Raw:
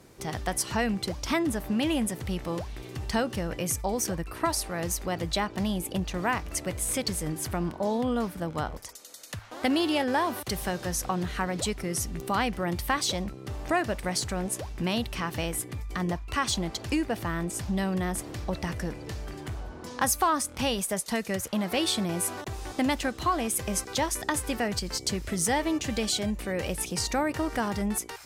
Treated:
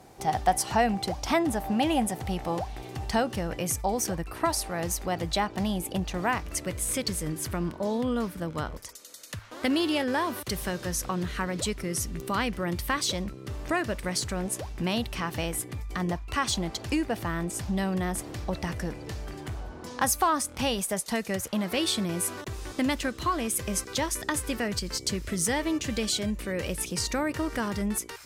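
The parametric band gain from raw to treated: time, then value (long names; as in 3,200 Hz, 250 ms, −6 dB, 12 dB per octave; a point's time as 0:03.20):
parametric band 770 Hz 0.35 octaves
0:02.76 +14.5 dB
0:03.34 +4.5 dB
0:06.17 +4.5 dB
0:06.68 −7 dB
0:14.16 −7 dB
0:14.56 +1 dB
0:21.42 +1 dB
0:21.85 −8.5 dB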